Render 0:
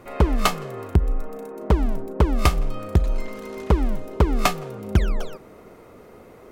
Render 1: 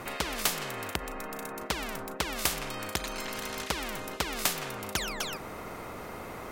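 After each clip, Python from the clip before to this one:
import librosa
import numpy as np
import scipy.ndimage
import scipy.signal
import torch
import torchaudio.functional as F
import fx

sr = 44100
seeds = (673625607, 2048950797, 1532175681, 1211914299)

y = fx.spectral_comp(x, sr, ratio=4.0)
y = F.gain(torch.from_numpy(y), -2.0).numpy()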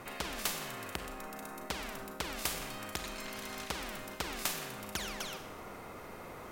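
y = fx.rev_schroeder(x, sr, rt60_s=0.85, comb_ms=31, drr_db=6.0)
y = F.gain(torch.from_numpy(y), -7.0).numpy()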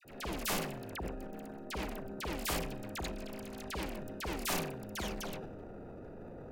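y = fx.wiener(x, sr, points=41)
y = fx.dispersion(y, sr, late='lows', ms=52.0, hz=1500.0)
y = fx.transient(y, sr, attack_db=-9, sustain_db=9)
y = F.gain(torch.from_numpy(y), 3.5).numpy()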